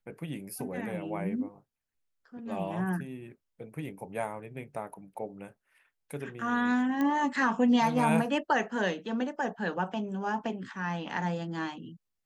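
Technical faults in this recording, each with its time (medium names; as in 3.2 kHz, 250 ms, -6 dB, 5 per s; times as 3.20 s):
7.01 s: pop -19 dBFS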